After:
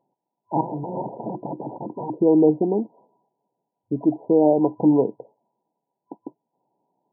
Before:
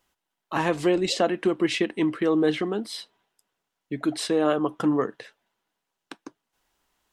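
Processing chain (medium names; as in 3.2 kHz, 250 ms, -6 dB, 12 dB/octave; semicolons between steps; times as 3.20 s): 0.61–2.16 s: integer overflow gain 25 dB; FFT band-pass 110–1000 Hz; trim +6 dB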